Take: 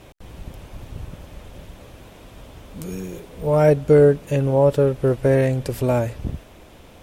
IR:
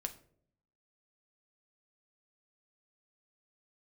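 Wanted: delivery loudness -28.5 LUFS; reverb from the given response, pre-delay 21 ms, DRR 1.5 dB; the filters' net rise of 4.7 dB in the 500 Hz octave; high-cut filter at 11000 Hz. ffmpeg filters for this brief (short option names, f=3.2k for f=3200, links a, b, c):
-filter_complex "[0:a]lowpass=11k,equalizer=f=500:t=o:g=5.5,asplit=2[a][b];[1:a]atrim=start_sample=2205,adelay=21[c];[b][c]afir=irnorm=-1:irlink=0,volume=-0.5dB[d];[a][d]amix=inputs=2:normalize=0,volume=-16.5dB"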